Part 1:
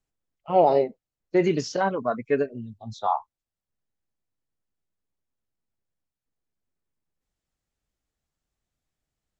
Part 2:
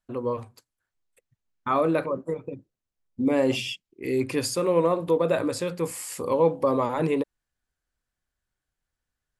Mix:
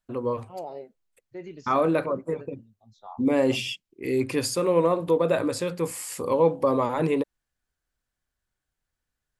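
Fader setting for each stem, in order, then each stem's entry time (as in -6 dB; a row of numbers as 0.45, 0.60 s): -18.5, +0.5 dB; 0.00, 0.00 s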